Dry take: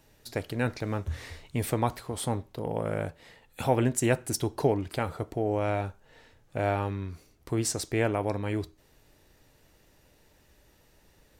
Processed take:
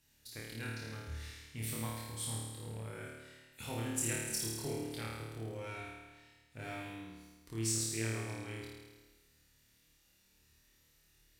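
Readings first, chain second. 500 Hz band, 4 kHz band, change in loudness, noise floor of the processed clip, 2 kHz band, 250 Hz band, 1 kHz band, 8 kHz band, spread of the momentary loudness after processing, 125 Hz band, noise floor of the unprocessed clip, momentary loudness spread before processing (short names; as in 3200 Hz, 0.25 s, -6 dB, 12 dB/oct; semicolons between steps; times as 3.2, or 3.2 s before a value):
-16.0 dB, -3.5 dB, -9.5 dB, -70 dBFS, -7.5 dB, -11.5 dB, -16.0 dB, -1.5 dB, 16 LU, -10.0 dB, -63 dBFS, 11 LU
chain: low shelf 200 Hz -11 dB; added harmonics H 8 -34 dB, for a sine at -10.5 dBFS; passive tone stack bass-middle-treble 6-0-2; on a send: flutter echo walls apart 4.6 m, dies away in 1.3 s; on the sum: gain +6.5 dB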